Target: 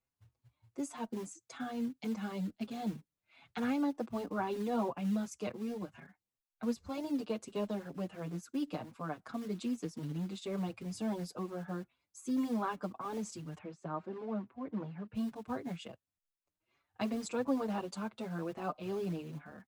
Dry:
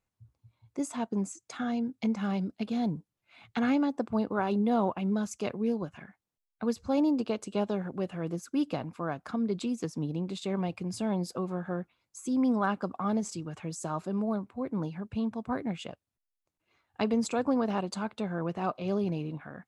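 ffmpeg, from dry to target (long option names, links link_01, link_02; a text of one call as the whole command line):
ffmpeg -i in.wav -filter_complex "[0:a]acrossover=split=260|1700[link_01][link_02][link_03];[link_01]acrusher=bits=4:mode=log:mix=0:aa=0.000001[link_04];[link_04][link_02][link_03]amix=inputs=3:normalize=0,asettb=1/sr,asplit=3[link_05][link_06][link_07];[link_05]atrim=end=13.584[link_08];[link_06]atrim=start=13.58:end=15.15,asetpts=PTS-STARTPTS,afade=type=in:duration=0.004:curve=qsin,afade=type=out:start_time=1.566:duration=0.004:curve=qsin,highpass=100,lowpass=2300[link_09];[link_07]atrim=start=15.146[link_10];[link_08][link_09]acrossfade=duration=0.004:curve1=hsin:curve2=qsin[link_11];[link_11][link_10]acrossfade=duration=0.004:curve1=qsin:curve2=hsin,asplit=2[link_12][link_13];[link_13]adelay=5.8,afreqshift=2.7[link_14];[link_12][link_14]amix=inputs=2:normalize=1,volume=-3.5dB" out.wav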